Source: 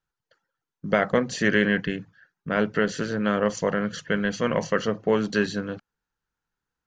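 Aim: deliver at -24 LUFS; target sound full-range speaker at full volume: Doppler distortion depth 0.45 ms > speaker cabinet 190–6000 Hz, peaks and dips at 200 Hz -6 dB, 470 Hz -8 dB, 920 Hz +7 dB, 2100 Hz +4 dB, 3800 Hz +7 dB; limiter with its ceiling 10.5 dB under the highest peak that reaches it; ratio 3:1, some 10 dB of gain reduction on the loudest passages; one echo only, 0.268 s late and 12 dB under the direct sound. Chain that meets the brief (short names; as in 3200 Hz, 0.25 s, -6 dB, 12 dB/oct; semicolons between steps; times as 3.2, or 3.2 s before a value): compressor 3:1, threshold -30 dBFS; limiter -24.5 dBFS; echo 0.268 s -12 dB; Doppler distortion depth 0.45 ms; speaker cabinet 190–6000 Hz, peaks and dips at 200 Hz -6 dB, 470 Hz -8 dB, 920 Hz +7 dB, 2100 Hz +4 dB, 3800 Hz +7 dB; gain +14.5 dB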